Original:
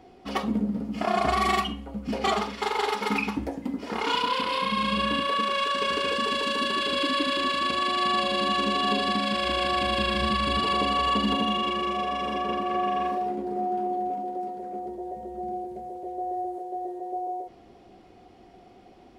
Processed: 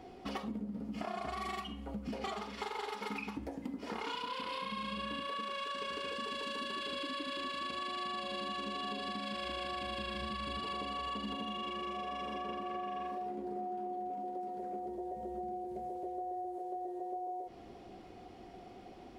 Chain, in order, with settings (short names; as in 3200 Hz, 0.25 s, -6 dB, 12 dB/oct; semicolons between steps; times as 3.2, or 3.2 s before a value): compressor, threshold -38 dBFS, peak gain reduction 17 dB